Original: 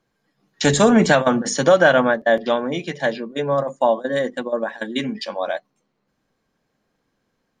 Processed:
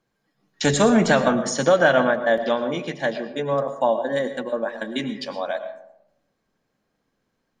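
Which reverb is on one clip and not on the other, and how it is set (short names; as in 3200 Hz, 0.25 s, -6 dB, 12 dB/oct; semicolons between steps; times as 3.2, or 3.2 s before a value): digital reverb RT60 0.82 s, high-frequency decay 0.35×, pre-delay 70 ms, DRR 10 dB; gain -3 dB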